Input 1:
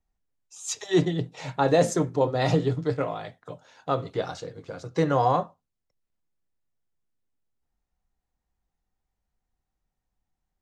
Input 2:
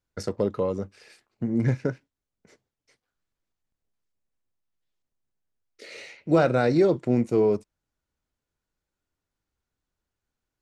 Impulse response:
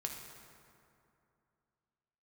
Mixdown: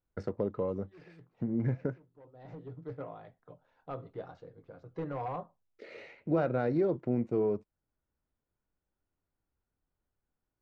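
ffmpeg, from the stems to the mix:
-filter_complex "[0:a]asoftclip=type=hard:threshold=-18dB,volume=-12.5dB[a];[1:a]acompressor=threshold=-37dB:ratio=1.5,volume=-1dB,asplit=2[b][c];[c]apad=whole_len=468145[d];[a][d]sidechaincompress=threshold=-55dB:ratio=10:attack=26:release=617[e];[e][b]amix=inputs=2:normalize=0,adynamicsmooth=sensitivity=0.5:basefreq=1.9k"

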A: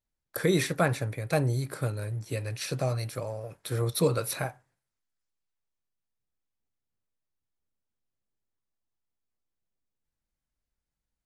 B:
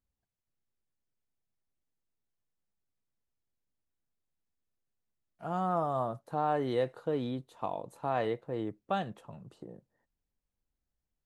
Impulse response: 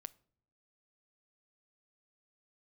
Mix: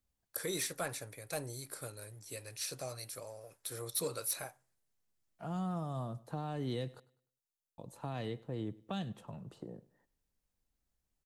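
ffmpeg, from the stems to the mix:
-filter_complex "[0:a]bass=f=250:g=-9,treble=f=4k:g=12,asoftclip=type=tanh:threshold=-14.5dB,volume=-13.5dB,asplit=2[a][b];[b]volume=-4.5dB[c];[1:a]acrossover=split=240|3000[d][e][f];[e]acompressor=threshold=-47dB:ratio=4[g];[d][g][f]amix=inputs=3:normalize=0,volume=2dB,asplit=3[h][i][j];[h]atrim=end=7,asetpts=PTS-STARTPTS,afade=t=out:st=6.996:d=0.004:c=hsin[k];[i]atrim=start=7:end=7.78,asetpts=PTS-STARTPTS,volume=0[l];[j]atrim=start=7.78,asetpts=PTS-STARTPTS,afade=t=in:d=0.004:c=hsin[m];[k][l][m]concat=n=3:v=0:a=1,asplit=2[n][o];[o]volume=-21.5dB[p];[2:a]atrim=start_sample=2205[q];[c][q]afir=irnorm=-1:irlink=0[r];[p]aecho=0:1:101|202|303|404|505:1|0.33|0.109|0.0359|0.0119[s];[a][n][r][s]amix=inputs=4:normalize=0"

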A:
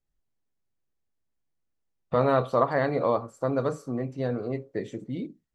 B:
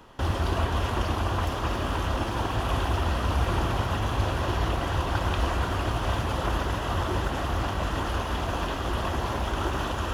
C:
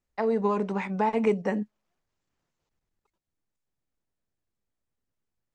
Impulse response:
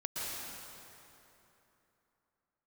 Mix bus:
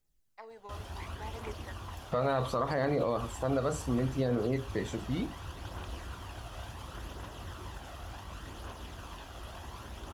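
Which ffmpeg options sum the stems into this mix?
-filter_complex "[0:a]volume=0.5dB[a];[1:a]adelay=500,volume=-18.5dB[b];[2:a]highpass=560,adelay=200,volume=-17.5dB[c];[a][b][c]amix=inputs=3:normalize=0,highshelf=f=3.6k:g=9,aphaser=in_gain=1:out_gain=1:delay=1.6:decay=0.32:speed=0.69:type=triangular,alimiter=limit=-20.5dB:level=0:latency=1:release=67"

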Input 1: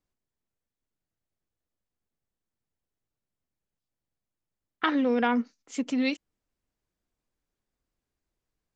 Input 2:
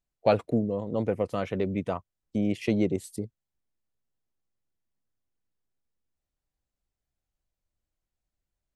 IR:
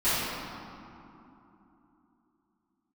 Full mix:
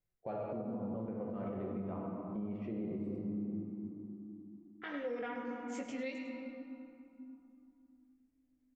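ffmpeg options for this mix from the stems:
-filter_complex "[0:a]equalizer=f=2k:w=3.8:g=6,flanger=delay=19:depth=2.7:speed=0.66,equalizer=f=125:t=o:w=1:g=9,equalizer=f=250:t=o:w=1:g=-9,equalizer=f=500:t=o:w=1:g=7,equalizer=f=1k:t=o:w=1:g=-7,equalizer=f=4k:t=o:w=1:g=-7,volume=-4dB,asplit=3[a][b][c];[b]volume=-19.5dB[d];[c]volume=-11dB[e];[1:a]lowpass=1.4k,volume=-12.5dB,asplit=2[f][g];[g]volume=-11dB[h];[2:a]atrim=start_sample=2205[i];[d][h]amix=inputs=2:normalize=0[j];[j][i]afir=irnorm=-1:irlink=0[k];[e]aecho=0:1:103:1[l];[a][f][k][l]amix=inputs=4:normalize=0,alimiter=level_in=7dB:limit=-24dB:level=0:latency=1:release=280,volume=-7dB"

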